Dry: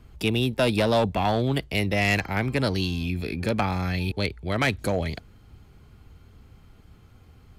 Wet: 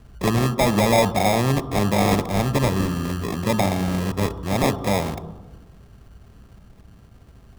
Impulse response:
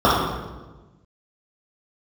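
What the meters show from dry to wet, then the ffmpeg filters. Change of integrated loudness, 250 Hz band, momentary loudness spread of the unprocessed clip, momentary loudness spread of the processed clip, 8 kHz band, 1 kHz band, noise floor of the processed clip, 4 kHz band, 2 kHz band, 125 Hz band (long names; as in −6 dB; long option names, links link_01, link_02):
+4.0 dB, +5.0 dB, 7 LU, 8 LU, +11.0 dB, +6.0 dB, −50 dBFS, +0.5 dB, −0.5 dB, +4.0 dB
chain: -filter_complex "[0:a]acrusher=samples=30:mix=1:aa=0.000001,asplit=2[link_01][link_02];[1:a]atrim=start_sample=2205[link_03];[link_02][link_03]afir=irnorm=-1:irlink=0,volume=-36.5dB[link_04];[link_01][link_04]amix=inputs=2:normalize=0,volume=3dB"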